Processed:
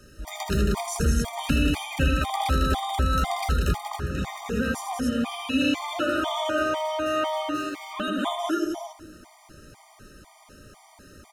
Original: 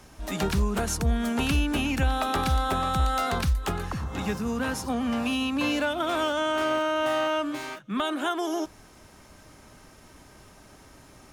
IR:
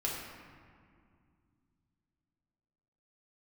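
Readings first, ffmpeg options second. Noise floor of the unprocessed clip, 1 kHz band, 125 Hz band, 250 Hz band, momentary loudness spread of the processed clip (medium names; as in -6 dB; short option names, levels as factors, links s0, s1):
-52 dBFS, +0.5 dB, +2.0 dB, +1.0 dB, 7 LU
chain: -filter_complex "[0:a]aecho=1:1:78.72|186.6|271.1:0.501|0.562|0.631,asplit=2[s0][s1];[1:a]atrim=start_sample=2205[s2];[s1][s2]afir=irnorm=-1:irlink=0,volume=0.15[s3];[s0][s3]amix=inputs=2:normalize=0,afftfilt=real='re*gt(sin(2*PI*2*pts/sr)*(1-2*mod(floor(b*sr/1024/620),2)),0)':imag='im*gt(sin(2*PI*2*pts/sr)*(1-2*mod(floor(b*sr/1024/620),2)),0)':win_size=1024:overlap=0.75"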